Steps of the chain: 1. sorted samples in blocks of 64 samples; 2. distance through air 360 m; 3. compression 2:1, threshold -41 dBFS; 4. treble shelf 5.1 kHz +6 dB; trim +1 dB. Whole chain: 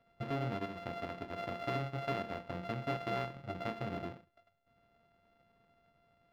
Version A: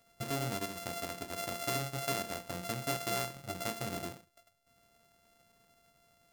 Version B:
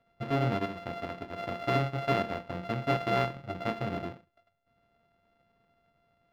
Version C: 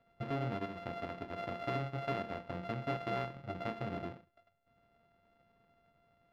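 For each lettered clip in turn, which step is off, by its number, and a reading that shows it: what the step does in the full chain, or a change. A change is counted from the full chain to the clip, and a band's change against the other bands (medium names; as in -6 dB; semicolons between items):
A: 2, 4 kHz band +9.0 dB; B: 3, mean gain reduction 5.5 dB; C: 4, 4 kHz band -2.0 dB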